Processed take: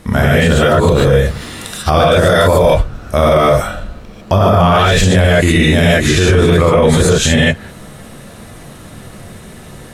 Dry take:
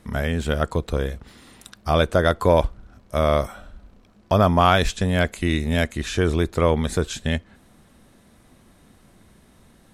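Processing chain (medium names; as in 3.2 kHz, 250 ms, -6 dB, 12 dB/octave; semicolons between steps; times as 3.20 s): 2.10–2.59 s: treble shelf 4.6 kHz +8.5 dB; gated-style reverb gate 170 ms rising, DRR -7.5 dB; loudness maximiser +13.5 dB; trim -1 dB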